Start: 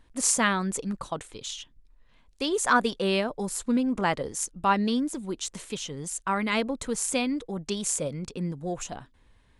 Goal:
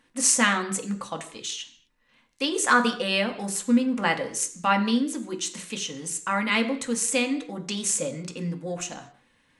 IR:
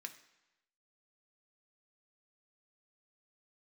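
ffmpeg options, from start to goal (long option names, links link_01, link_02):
-filter_complex "[1:a]atrim=start_sample=2205,afade=type=out:start_time=0.33:duration=0.01,atrim=end_sample=14994,asetrate=48510,aresample=44100[link_01];[0:a][link_01]afir=irnorm=-1:irlink=0,volume=9dB"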